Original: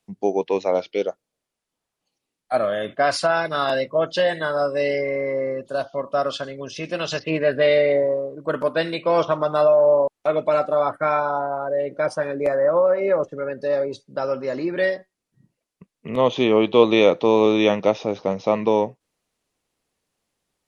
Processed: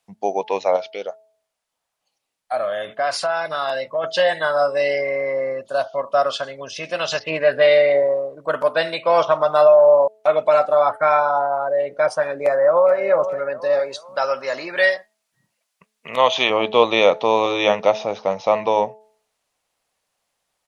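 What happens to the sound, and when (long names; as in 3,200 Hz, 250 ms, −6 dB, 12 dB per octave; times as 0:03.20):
0:00.76–0:04.04: downward compressor 2 to 1, threshold −27 dBFS
0:12.43–0:12.97: delay throw 430 ms, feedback 40%, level −10.5 dB
0:13.79–0:16.50: tilt shelving filter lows −6.5 dB, about 650 Hz
whole clip: low shelf with overshoot 480 Hz −8.5 dB, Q 1.5; hum removal 216.2 Hz, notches 4; level +3.5 dB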